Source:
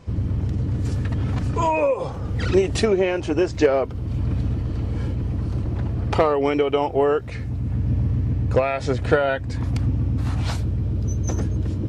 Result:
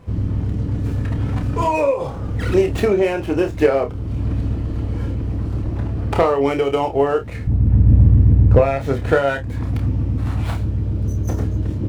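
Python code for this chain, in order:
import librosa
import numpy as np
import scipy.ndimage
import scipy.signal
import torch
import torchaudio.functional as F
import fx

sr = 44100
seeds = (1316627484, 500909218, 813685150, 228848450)

y = scipy.ndimage.median_filter(x, 9, mode='constant')
y = fx.tilt_eq(y, sr, slope=-2.5, at=(7.47, 8.77))
y = fx.room_early_taps(y, sr, ms=(29, 50), db=(-7.0, -16.0))
y = y * 10.0 ** (1.5 / 20.0)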